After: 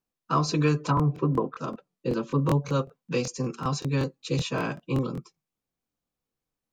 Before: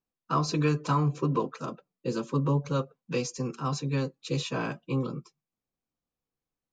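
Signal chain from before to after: 0.83–2.39 s: low-pass that closes with the level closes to 1 kHz, closed at -21.5 dBFS; crackling interface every 0.19 s, samples 1024, repeat, from 0.95 s; trim +2.5 dB

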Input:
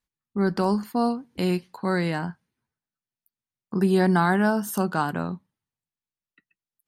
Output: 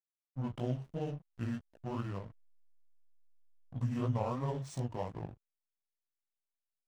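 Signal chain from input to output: rotating-head pitch shifter -7.5 st; chorus 2.9 Hz, delay 15.5 ms, depth 6.6 ms; hysteresis with a dead band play -34.5 dBFS; trim -9 dB

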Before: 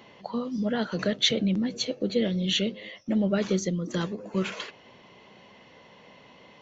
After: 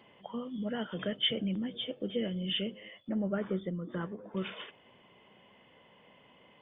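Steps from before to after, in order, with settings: knee-point frequency compression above 2.9 kHz 4:1; 3.09–4.37 s: resonant high shelf 2.3 kHz -14 dB, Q 1.5; trim -8 dB

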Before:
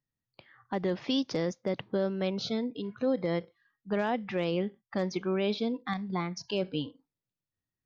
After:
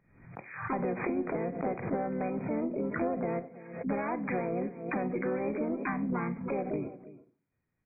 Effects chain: in parallel at -0.5 dB: peak limiter -28.5 dBFS, peak gain reduction 9.5 dB; on the sum: compression 10:1, threshold -32 dBFS, peak gain reduction 11.5 dB; echo from a far wall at 57 m, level -17 dB; harmony voices -4 st -12 dB, +5 st -1 dB; Chebyshev shaper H 2 -19 dB, 5 -29 dB, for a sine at -18.5 dBFS; brick-wall FIR low-pass 2.5 kHz; reverberation RT60 0.45 s, pre-delay 25 ms, DRR 14 dB; swell ahead of each attack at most 79 dB/s

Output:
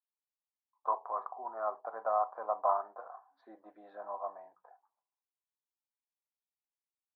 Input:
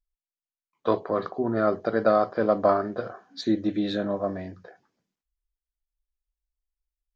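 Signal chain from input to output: Butterworth band-pass 910 Hz, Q 2.6

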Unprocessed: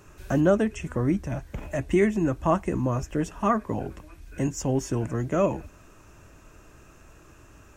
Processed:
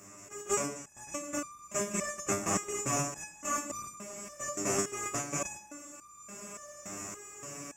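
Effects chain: spectral levelling over time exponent 0.2; gate -12 dBFS, range -22 dB; level held to a coarse grid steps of 16 dB; high-pass 55 Hz; tone controls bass +3 dB, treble +12 dB; level rider gain up to 10 dB; reverberation RT60 1.0 s, pre-delay 69 ms, DRR 12.5 dB; resonator arpeggio 3.5 Hz 100–1200 Hz; trim +7.5 dB

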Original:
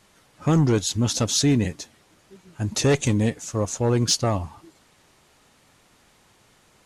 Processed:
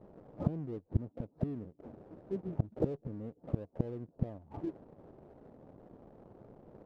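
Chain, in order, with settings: in parallel at -8 dB: saturation -25.5 dBFS, distortion -7 dB; on the sum: inverse Chebyshev low-pass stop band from 2.8 kHz, stop band 70 dB; bass shelf 130 Hz -8.5 dB; inverted gate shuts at -25 dBFS, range -30 dB; waveshaping leveller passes 1; trim +6.5 dB

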